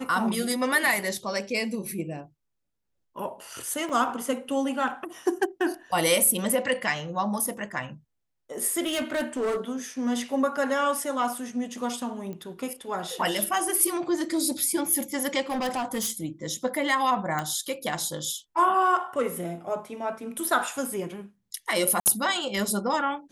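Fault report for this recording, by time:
3.89 gap 4.4 ms
8.86–9.6 clipped -23.5 dBFS
12.33 pop -26 dBFS
15.49–16.12 clipped -24.5 dBFS
17.39 pop
22–22.06 gap 59 ms

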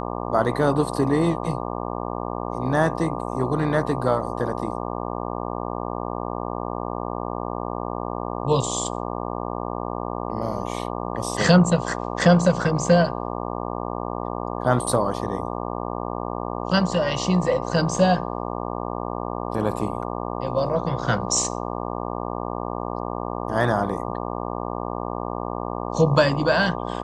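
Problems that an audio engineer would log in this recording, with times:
buzz 60 Hz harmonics 20 -29 dBFS

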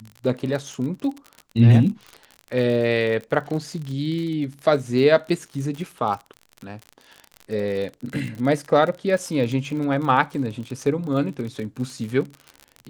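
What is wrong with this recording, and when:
crackle 43/s -29 dBFS

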